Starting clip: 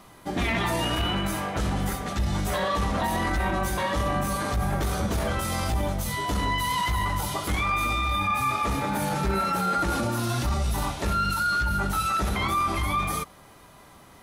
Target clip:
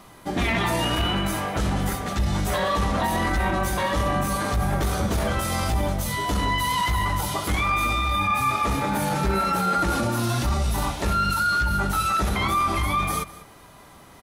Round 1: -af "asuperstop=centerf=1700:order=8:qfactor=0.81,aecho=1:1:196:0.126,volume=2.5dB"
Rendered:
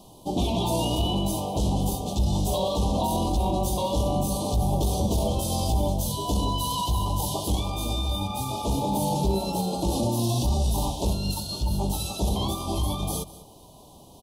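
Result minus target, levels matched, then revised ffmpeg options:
2,000 Hz band −19.5 dB
-af "aecho=1:1:196:0.126,volume=2.5dB"

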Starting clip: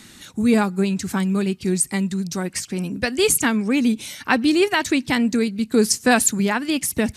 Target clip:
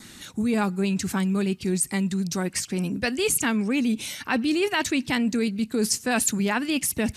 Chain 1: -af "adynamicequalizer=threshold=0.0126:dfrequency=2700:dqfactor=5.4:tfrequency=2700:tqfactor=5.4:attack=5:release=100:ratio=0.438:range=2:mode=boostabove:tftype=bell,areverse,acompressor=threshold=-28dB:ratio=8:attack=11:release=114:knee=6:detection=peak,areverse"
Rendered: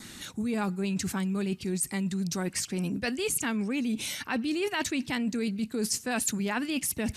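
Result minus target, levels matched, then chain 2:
downward compressor: peak gain reduction +6.5 dB
-af "adynamicequalizer=threshold=0.0126:dfrequency=2700:dqfactor=5.4:tfrequency=2700:tqfactor=5.4:attack=5:release=100:ratio=0.438:range=2:mode=boostabove:tftype=bell,areverse,acompressor=threshold=-20.5dB:ratio=8:attack=11:release=114:knee=6:detection=peak,areverse"

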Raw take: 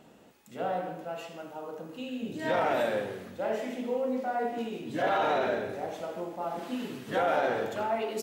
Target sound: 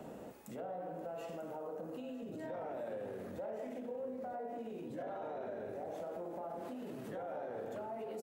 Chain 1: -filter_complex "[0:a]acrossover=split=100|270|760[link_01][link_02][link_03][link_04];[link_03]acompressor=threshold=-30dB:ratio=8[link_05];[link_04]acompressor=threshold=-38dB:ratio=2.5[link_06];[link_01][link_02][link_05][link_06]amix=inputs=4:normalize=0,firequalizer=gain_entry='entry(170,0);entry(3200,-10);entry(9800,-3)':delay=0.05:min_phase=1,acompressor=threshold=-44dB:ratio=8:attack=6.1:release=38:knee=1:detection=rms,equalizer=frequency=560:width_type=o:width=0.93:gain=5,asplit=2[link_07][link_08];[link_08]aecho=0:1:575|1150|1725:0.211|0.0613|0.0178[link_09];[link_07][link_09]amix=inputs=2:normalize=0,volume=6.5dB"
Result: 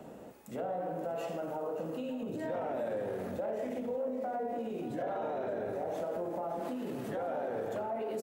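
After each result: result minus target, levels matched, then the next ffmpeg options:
echo 368 ms early; downward compressor: peak gain reduction −7 dB
-filter_complex "[0:a]acrossover=split=100|270|760[link_01][link_02][link_03][link_04];[link_03]acompressor=threshold=-30dB:ratio=8[link_05];[link_04]acompressor=threshold=-38dB:ratio=2.5[link_06];[link_01][link_02][link_05][link_06]amix=inputs=4:normalize=0,firequalizer=gain_entry='entry(170,0);entry(3200,-10);entry(9800,-3)':delay=0.05:min_phase=1,acompressor=threshold=-44dB:ratio=8:attack=6.1:release=38:knee=1:detection=rms,equalizer=frequency=560:width_type=o:width=0.93:gain=5,asplit=2[link_07][link_08];[link_08]aecho=0:1:943|1886|2829:0.211|0.0613|0.0178[link_09];[link_07][link_09]amix=inputs=2:normalize=0,volume=6.5dB"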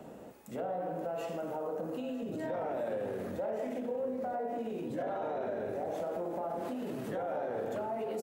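downward compressor: peak gain reduction −7 dB
-filter_complex "[0:a]acrossover=split=100|270|760[link_01][link_02][link_03][link_04];[link_03]acompressor=threshold=-30dB:ratio=8[link_05];[link_04]acompressor=threshold=-38dB:ratio=2.5[link_06];[link_01][link_02][link_05][link_06]amix=inputs=4:normalize=0,firequalizer=gain_entry='entry(170,0);entry(3200,-10);entry(9800,-3)':delay=0.05:min_phase=1,acompressor=threshold=-52dB:ratio=8:attack=6.1:release=38:knee=1:detection=rms,equalizer=frequency=560:width_type=o:width=0.93:gain=5,asplit=2[link_07][link_08];[link_08]aecho=0:1:943|1886|2829:0.211|0.0613|0.0178[link_09];[link_07][link_09]amix=inputs=2:normalize=0,volume=6.5dB"

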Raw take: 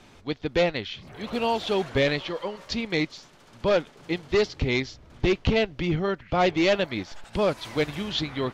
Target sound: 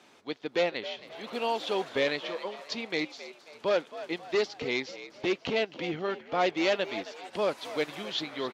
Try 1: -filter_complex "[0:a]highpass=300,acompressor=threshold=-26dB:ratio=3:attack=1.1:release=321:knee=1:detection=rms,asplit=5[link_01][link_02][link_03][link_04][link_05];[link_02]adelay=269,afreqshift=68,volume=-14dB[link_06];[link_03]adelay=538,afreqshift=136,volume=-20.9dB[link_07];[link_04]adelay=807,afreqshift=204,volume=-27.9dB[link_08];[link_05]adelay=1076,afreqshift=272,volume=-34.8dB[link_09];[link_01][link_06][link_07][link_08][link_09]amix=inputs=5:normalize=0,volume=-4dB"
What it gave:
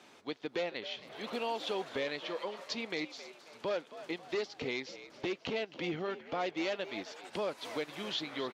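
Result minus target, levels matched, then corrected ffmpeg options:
downward compressor: peak gain reduction +9.5 dB
-filter_complex "[0:a]highpass=300,asplit=5[link_01][link_02][link_03][link_04][link_05];[link_02]adelay=269,afreqshift=68,volume=-14dB[link_06];[link_03]adelay=538,afreqshift=136,volume=-20.9dB[link_07];[link_04]adelay=807,afreqshift=204,volume=-27.9dB[link_08];[link_05]adelay=1076,afreqshift=272,volume=-34.8dB[link_09];[link_01][link_06][link_07][link_08][link_09]amix=inputs=5:normalize=0,volume=-4dB"

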